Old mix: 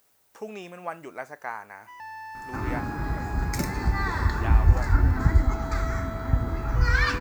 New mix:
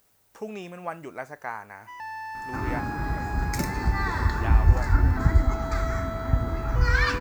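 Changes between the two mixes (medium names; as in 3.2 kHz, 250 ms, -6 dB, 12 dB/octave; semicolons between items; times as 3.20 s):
speech: add bass shelf 150 Hz +11 dB; first sound +3.5 dB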